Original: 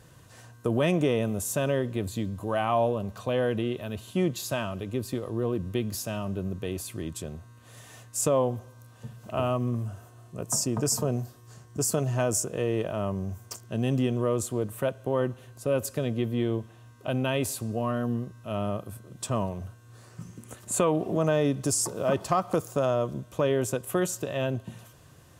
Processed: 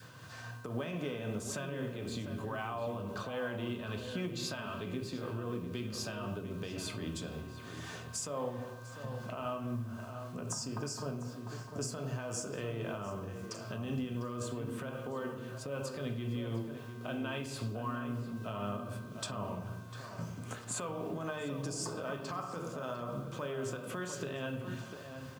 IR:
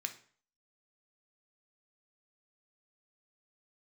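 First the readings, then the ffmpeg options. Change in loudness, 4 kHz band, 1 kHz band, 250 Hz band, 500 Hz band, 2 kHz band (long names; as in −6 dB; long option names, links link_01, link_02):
−11.0 dB, −5.5 dB, −9.0 dB, −9.5 dB, −12.0 dB, −5.0 dB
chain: -filter_complex "[0:a]lowpass=5500[link_01];[1:a]atrim=start_sample=2205,asetrate=28665,aresample=44100[link_02];[link_01][link_02]afir=irnorm=-1:irlink=0,acompressor=threshold=-39dB:ratio=2.5,alimiter=level_in=6.5dB:limit=-24dB:level=0:latency=1:release=161,volume=-6.5dB,acrusher=bits=10:mix=0:aa=0.000001,highpass=110,tremolo=f=3.8:d=0.31,asplit=2[link_03][link_04];[link_04]adelay=699.7,volume=-8dB,highshelf=frequency=4000:gain=-15.7[link_05];[link_03][link_05]amix=inputs=2:normalize=0,adynamicequalizer=threshold=0.00158:dfrequency=690:dqfactor=1.9:tfrequency=690:tqfactor=1.9:attack=5:release=100:ratio=0.375:range=2:mode=cutabove:tftype=bell,volume=4.5dB"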